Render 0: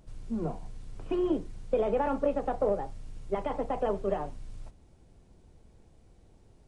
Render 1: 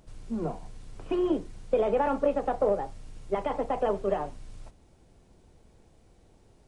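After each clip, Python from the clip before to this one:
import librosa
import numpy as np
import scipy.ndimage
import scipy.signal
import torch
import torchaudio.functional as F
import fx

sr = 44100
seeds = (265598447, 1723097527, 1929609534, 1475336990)

y = fx.low_shelf(x, sr, hz=240.0, db=-5.5)
y = F.gain(torch.from_numpy(y), 3.5).numpy()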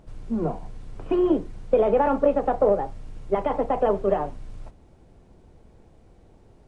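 y = fx.high_shelf(x, sr, hz=2900.0, db=-11.0)
y = F.gain(torch.from_numpy(y), 6.0).numpy()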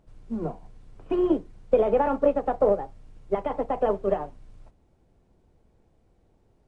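y = fx.upward_expand(x, sr, threshold_db=-35.0, expansion=1.5)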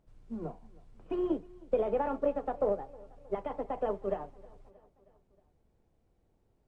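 y = fx.echo_feedback(x, sr, ms=315, feedback_pct=58, wet_db=-23)
y = F.gain(torch.from_numpy(y), -8.5).numpy()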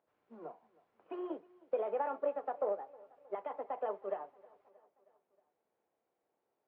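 y = fx.bandpass_edges(x, sr, low_hz=550.0, high_hz=2300.0)
y = F.gain(torch.from_numpy(y), -1.5).numpy()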